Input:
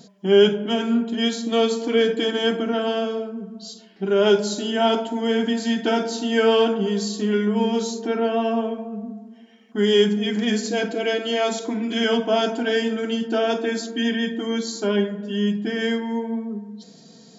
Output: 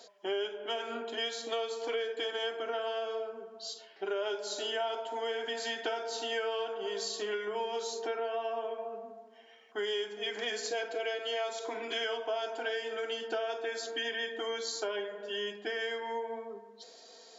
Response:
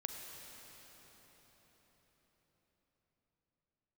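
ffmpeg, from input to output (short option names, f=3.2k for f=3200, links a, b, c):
-af "highpass=f=470:w=0.5412,highpass=f=470:w=1.3066,highshelf=f=6k:g=-8,acompressor=threshold=-32dB:ratio=6"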